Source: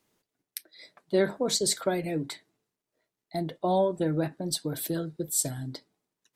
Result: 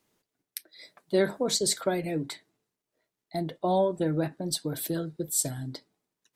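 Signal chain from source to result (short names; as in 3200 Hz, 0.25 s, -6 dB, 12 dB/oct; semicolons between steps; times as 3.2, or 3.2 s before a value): 0.7–1.42 high shelf 11000 Hz -> 5800 Hz +8.5 dB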